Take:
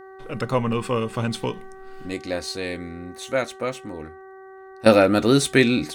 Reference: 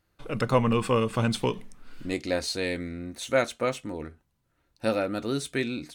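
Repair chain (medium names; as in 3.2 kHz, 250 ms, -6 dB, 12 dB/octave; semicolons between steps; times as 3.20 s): de-hum 382.2 Hz, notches 5; trim 0 dB, from 4.86 s -12 dB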